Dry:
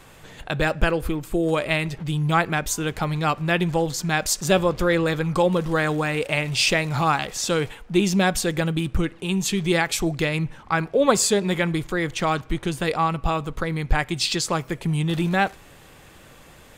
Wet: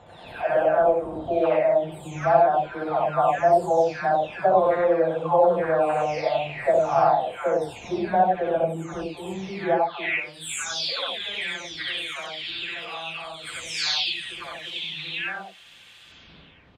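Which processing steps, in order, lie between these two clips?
every frequency bin delayed by itself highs early, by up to 748 ms
wind on the microphone 100 Hz −32 dBFS
dynamic equaliser 680 Hz, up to +7 dB, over −43 dBFS, Q 4.9
in parallel at +2.5 dB: downward compressor, threshold −26 dBFS, peak gain reduction 13 dB
on the sum: loudspeakers that aren't time-aligned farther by 21 metres −3 dB, 32 metres −1 dB
band-pass filter sweep 700 Hz → 3,300 Hz, 0:09.76–0:10.27

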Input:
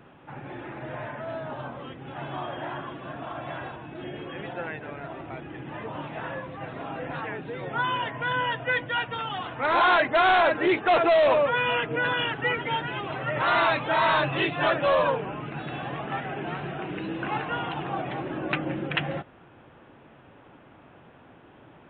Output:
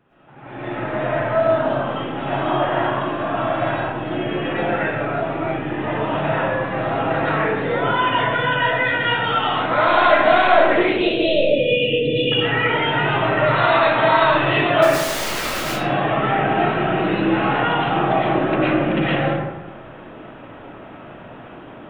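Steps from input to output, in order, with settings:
0:10.75–0:12.32: Chebyshev band-stop filter 520–2,600 Hz, order 4
brickwall limiter −23.5 dBFS, peak gain reduction 10 dB
automatic gain control gain up to 14 dB
0:14.82–0:15.64: wrap-around overflow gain 18.5 dB
comb and all-pass reverb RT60 1.1 s, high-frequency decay 0.5×, pre-delay 75 ms, DRR −10 dB
level −10.5 dB

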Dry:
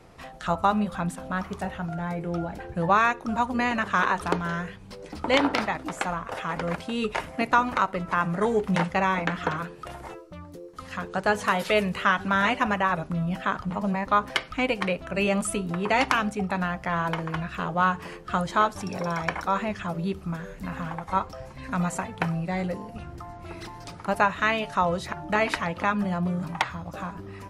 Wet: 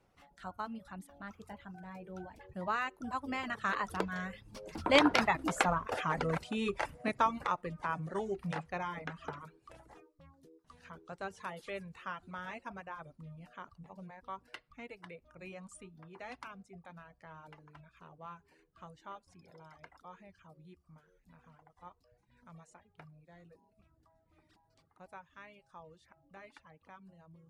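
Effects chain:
source passing by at 0:05.56, 26 m/s, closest 17 metres
reverb reduction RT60 0.64 s

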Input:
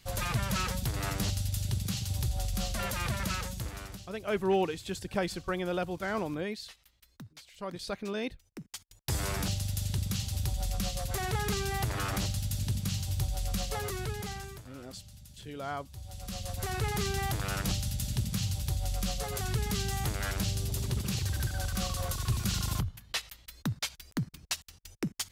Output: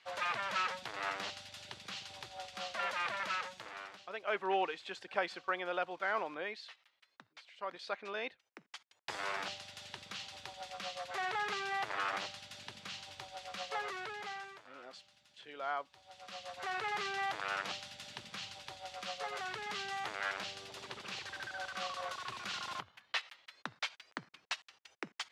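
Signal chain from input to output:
band-pass filter 730–2,800 Hz
level +2 dB

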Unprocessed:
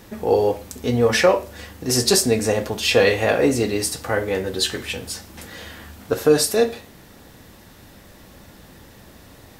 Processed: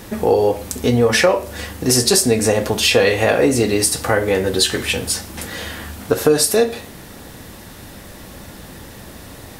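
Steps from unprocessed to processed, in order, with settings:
parametric band 9,800 Hz +4.5 dB 0.47 octaves
downward compressor 2.5 to 1, threshold −22 dBFS, peak gain reduction 8.5 dB
boost into a limiter +9.5 dB
level −1 dB

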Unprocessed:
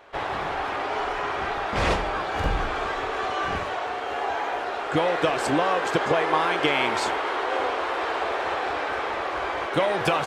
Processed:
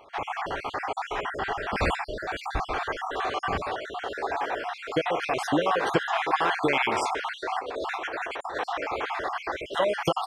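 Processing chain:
time-frequency cells dropped at random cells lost 49%
0:07.59–0:08.58: compressor whose output falls as the input rises −33 dBFS, ratio −1

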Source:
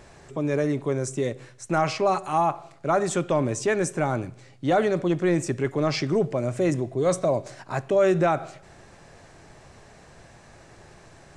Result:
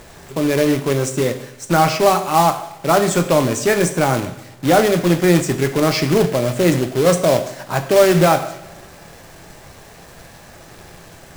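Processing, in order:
log-companded quantiser 4 bits
coupled-rooms reverb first 0.65 s, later 2.1 s, DRR 7 dB
level +7 dB

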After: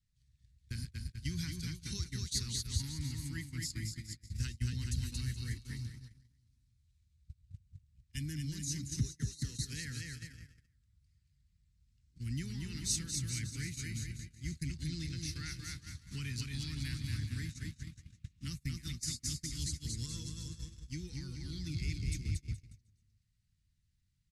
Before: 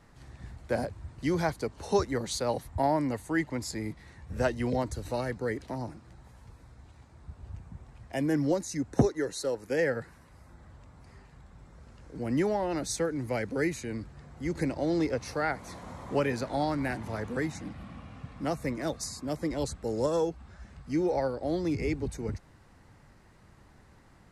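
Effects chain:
on a send: bouncing-ball delay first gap 230 ms, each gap 0.85×, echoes 5
on the sum: downward compressor 2 to 1, threshold −44 dBFS, peak gain reduction 14.5 dB
noise gate −40 dBFS, range −30 dB
Chebyshev band-stop filter 110–3,700 Hz, order 2
level +11 dB

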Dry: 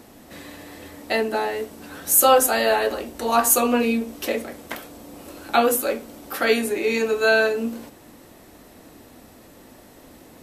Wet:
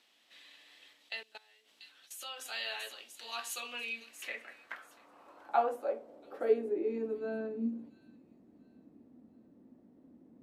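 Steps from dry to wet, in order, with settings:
0:00.93–0:02.46: output level in coarse steps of 22 dB
delay with a high-pass on its return 688 ms, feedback 33%, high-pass 4,500 Hz, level −6 dB
band-pass filter sweep 3,200 Hz → 230 Hz, 0:03.72–0:07.37
level −6.5 dB

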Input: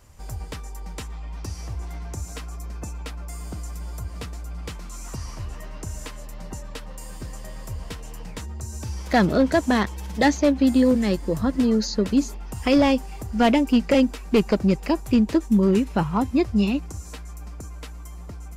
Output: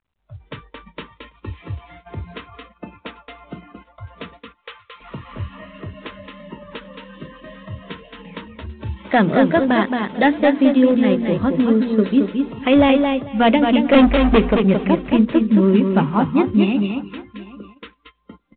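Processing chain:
0:04.32–0:05.00: high-pass filter 300 Hz → 940 Hz 12 dB per octave
0:13.93–0:14.38: leveller curve on the samples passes 3
mains-hum notches 60/120/180/240/300/360/420/480 Hz
repeating echo 221 ms, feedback 16%, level −5 dB
noise reduction from a noise print of the clip's start 21 dB
single-tap delay 791 ms −21.5 dB
noise gate −46 dBFS, range −17 dB
automatic gain control gain up to 5.5 dB
mu-law 64 kbit/s 8,000 Hz

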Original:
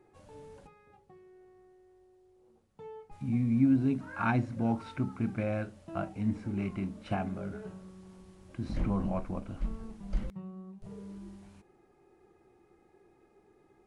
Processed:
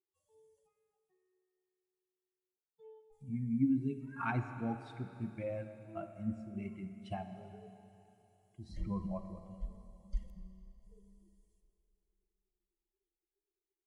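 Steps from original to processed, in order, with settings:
spectral dynamics exaggerated over time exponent 2
four-comb reverb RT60 3.2 s, combs from 28 ms, DRR 8 dB
level −3.5 dB

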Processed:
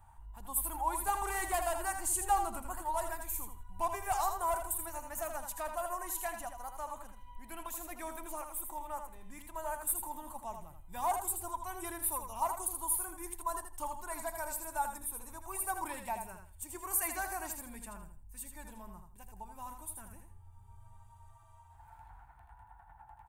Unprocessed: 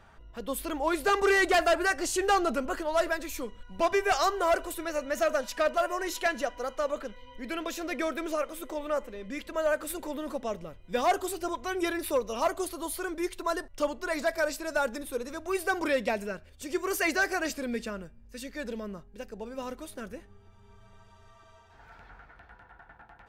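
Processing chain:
drawn EQ curve 100 Hz 0 dB, 240 Hz −18 dB, 340 Hz −16 dB, 490 Hz −28 dB, 890 Hz +3 dB, 1,300 Hz −14 dB, 5,400 Hz −17 dB, 8,800 Hz +6 dB
repeating echo 81 ms, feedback 23%, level −7 dB

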